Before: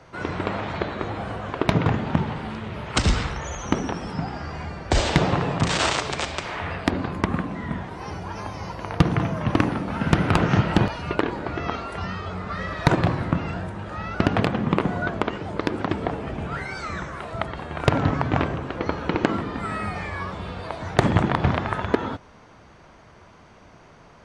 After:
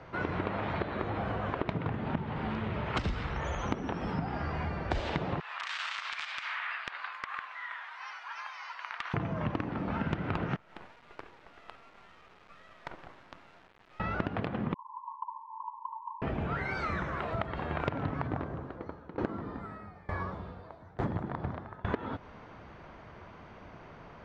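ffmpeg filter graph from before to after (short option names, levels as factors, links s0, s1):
-filter_complex "[0:a]asettb=1/sr,asplit=3[s0][s1][s2];[s0]atrim=end=5.404[s3];[s1]atrim=start=5.4:end=9.14,asetpts=PTS-STARTPTS,afade=t=in:d=0.004:c=qsin,afade=t=out:st=3.736:d=0.004:c=qsin,highpass=f=1200:w=0.5412,highpass=f=1200:w=1.3066,acompressor=threshold=0.0316:ratio=6:attack=3.2:release=140:knee=1:detection=peak,aeval=exprs='clip(val(0),-1,0.075)':c=same[s4];[s2]atrim=start=9.136[s5];[s3][s4]acrossfade=d=0.004:c1=hsin:c2=qsin[s6];[s6][s5]acrossfade=d=0.004:c1=qsin:c2=hsin,asettb=1/sr,asplit=3[s7][s8][s9];[s7]atrim=end=10.564[s10];[s8]atrim=start=10.56:end=14,asetpts=PTS-STARTPTS,afade=t=in:d=0.004:c=qsin,afade=t=out:st=3.436:d=0.004:c=qsin,lowpass=1200,aderivative,acrusher=bits=6:dc=4:mix=0:aa=0.000001[s11];[s9]atrim=start=13.996[s12];[s10][s11]acrossfade=d=0.004:c1=hsin:c2=qsin[s13];[s13][s12]acrossfade=d=0.004:c1=qsin:c2=hsin,asettb=1/sr,asplit=3[s14][s15][s16];[s14]atrim=end=14.744[s17];[s15]atrim=start=14.74:end=16.22,asetpts=PTS-STARTPTS,afade=t=in:d=0.004:c=qsin,afade=t=out:st=1.476:d=0.004:c=qsin,asuperpass=centerf=980:order=20:qfactor=4.3,acompressor=threshold=0.0178:ratio=2:attack=3.2:release=140:knee=1:detection=peak[s18];[s16]atrim=start=16.216[s19];[s17][s18]acrossfade=d=0.004:c1=hsin:c2=qsin[s20];[s20][s19]acrossfade=d=0.004:c1=qsin:c2=hsin,asettb=1/sr,asplit=3[s21][s22][s23];[s21]atrim=end=18.274[s24];[s22]atrim=start=18.27:end=21.85,asetpts=PTS-STARTPTS,afade=t=in:d=0.004:c=qsin,afade=t=out:st=3.576:d=0.004:c=qsin,equalizer=f=2700:t=o:w=1:g=-10,aeval=exprs='val(0)*pow(10,-24*if(lt(mod(1.1*n/s,1),2*abs(1.1)/1000),1-mod(1.1*n/s,1)/(2*abs(1.1)/1000),(mod(1.1*n/s,1)-2*abs(1.1)/1000)/(1-2*abs(1.1)/1000))/20)':c=same[s25];[s23]atrim=start=21.846[s26];[s24][s25]acrossfade=d=0.004:c1=hsin:c2=qsin[s27];[s27][s26]acrossfade=d=0.004:c1=qsin:c2=hsin,lowpass=3100,acompressor=threshold=0.0355:ratio=10"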